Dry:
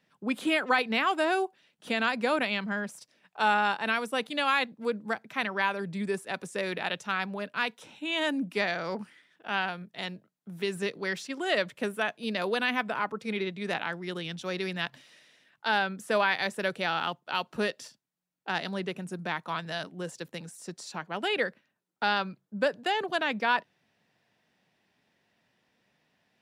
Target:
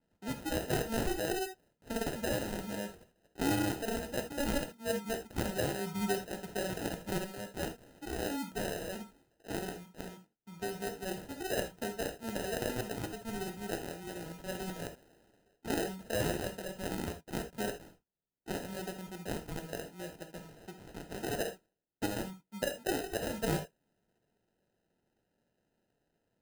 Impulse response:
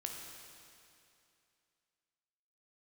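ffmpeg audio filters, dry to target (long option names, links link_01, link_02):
-filter_complex "[0:a]asettb=1/sr,asplit=3[link_01][link_02][link_03];[link_01]atrim=end=4.894[link_04];[link_02]atrim=start=4.89:end=7.18,asetpts=PTS-STARTPTS,afade=type=in:duration=0.004:curve=qsin,afade=type=out:start_time=2.286:duration=0.004:curve=qsin,aecho=1:1:4.7:0.91,atrim=end_sample=100989[link_05];[link_03]atrim=start=7.176[link_06];[link_04][link_05]acrossfade=duration=0.004:curve1=hsin:curve2=qsin[link_07];[link_07][link_06]acrossfade=duration=0.004:curve1=qsin:curve2=hsin,acrusher=samples=39:mix=1:aa=0.000001[link_08];[1:a]atrim=start_sample=2205,afade=type=out:start_time=0.13:duration=0.01,atrim=end_sample=6174[link_09];[link_08][link_09]afir=irnorm=-1:irlink=0,adynamicequalizer=threshold=0.00224:dfrequency=7100:dqfactor=0.7:tfrequency=7100:tqfactor=0.7:attack=5:release=100:ratio=0.375:range=2.5:mode=boostabove:tftype=highshelf,volume=-4.5dB"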